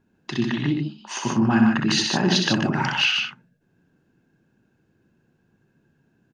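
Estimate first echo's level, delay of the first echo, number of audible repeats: -5.5 dB, 63 ms, 2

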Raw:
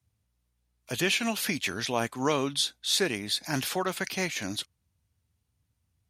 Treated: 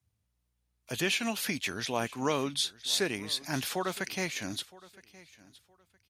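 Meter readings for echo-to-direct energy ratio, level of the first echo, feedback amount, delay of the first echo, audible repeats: -21.0 dB, -21.0 dB, 24%, 966 ms, 2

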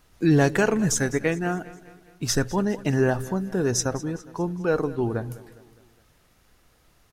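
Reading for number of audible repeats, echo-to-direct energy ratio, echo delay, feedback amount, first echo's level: 3, -17.0 dB, 205 ms, 52%, -18.5 dB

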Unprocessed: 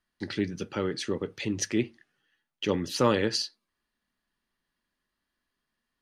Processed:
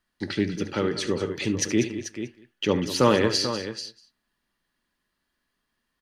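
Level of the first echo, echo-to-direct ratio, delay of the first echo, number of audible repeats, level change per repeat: -13.5 dB, -7.5 dB, 72 ms, 6, no regular repeats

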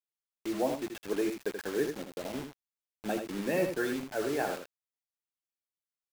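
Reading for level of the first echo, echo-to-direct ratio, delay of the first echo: -7.0 dB, -7.0 dB, 81 ms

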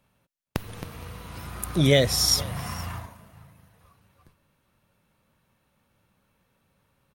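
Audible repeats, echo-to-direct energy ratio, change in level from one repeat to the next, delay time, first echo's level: 1, -22.0 dB, no regular repeats, 467 ms, -22.0 dB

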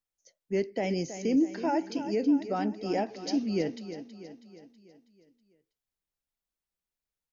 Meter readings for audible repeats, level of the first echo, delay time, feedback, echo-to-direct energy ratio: 5, -11.5 dB, 323 ms, 52%, -10.0 dB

